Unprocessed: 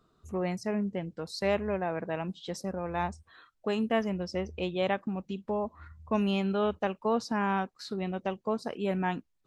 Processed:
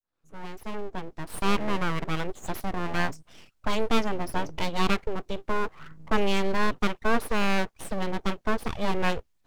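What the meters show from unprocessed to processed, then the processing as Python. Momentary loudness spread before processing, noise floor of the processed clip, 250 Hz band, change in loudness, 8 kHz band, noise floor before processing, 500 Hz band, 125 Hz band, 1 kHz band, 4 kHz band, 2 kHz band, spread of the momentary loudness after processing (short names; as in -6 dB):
8 LU, -69 dBFS, +1.0 dB, +2.5 dB, +7.5 dB, -74 dBFS, 0.0 dB, +2.0 dB, +4.0 dB, +6.5 dB, +7.0 dB, 12 LU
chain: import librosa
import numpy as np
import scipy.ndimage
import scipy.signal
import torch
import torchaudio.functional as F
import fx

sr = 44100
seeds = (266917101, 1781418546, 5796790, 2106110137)

y = fx.fade_in_head(x, sr, length_s=1.69)
y = np.abs(y)
y = y * librosa.db_to_amplitude(7.0)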